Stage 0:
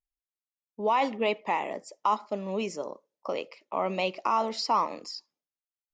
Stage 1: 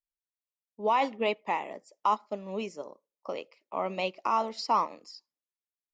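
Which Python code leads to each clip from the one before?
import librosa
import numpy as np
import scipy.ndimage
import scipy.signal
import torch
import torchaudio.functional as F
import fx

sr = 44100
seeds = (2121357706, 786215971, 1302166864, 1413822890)

y = fx.upward_expand(x, sr, threshold_db=-44.0, expansion=1.5)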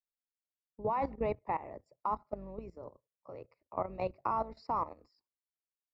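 y = fx.octave_divider(x, sr, octaves=2, level_db=-3.0)
y = fx.level_steps(y, sr, step_db=15)
y = np.convolve(y, np.full(14, 1.0 / 14))[:len(y)]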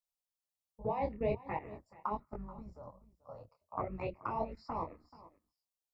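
y = fx.env_phaser(x, sr, low_hz=290.0, high_hz=1400.0, full_db=-28.5)
y = y + 10.0 ** (-19.0 / 20.0) * np.pad(y, (int(432 * sr / 1000.0), 0))[:len(y)]
y = fx.detune_double(y, sr, cents=45)
y = y * librosa.db_to_amplitude(6.0)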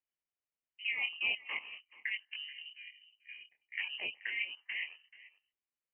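y = fx.freq_invert(x, sr, carrier_hz=3000)
y = y * librosa.db_to_amplitude(-1.0)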